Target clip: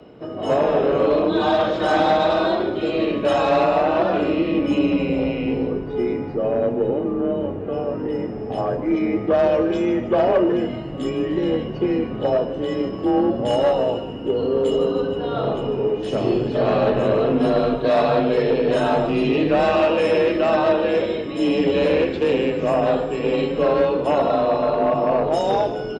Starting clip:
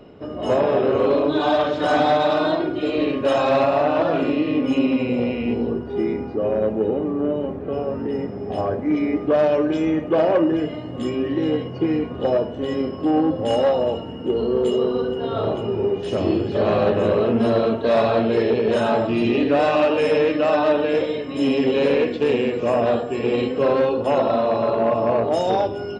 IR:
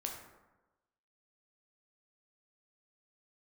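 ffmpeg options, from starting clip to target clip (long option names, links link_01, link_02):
-filter_complex "[0:a]asplit=5[link_01][link_02][link_03][link_04][link_05];[link_02]adelay=151,afreqshift=-110,volume=-12dB[link_06];[link_03]adelay=302,afreqshift=-220,volume=-19.5dB[link_07];[link_04]adelay=453,afreqshift=-330,volume=-27.1dB[link_08];[link_05]adelay=604,afreqshift=-440,volume=-34.6dB[link_09];[link_01][link_06][link_07][link_08][link_09]amix=inputs=5:normalize=0,afreqshift=26"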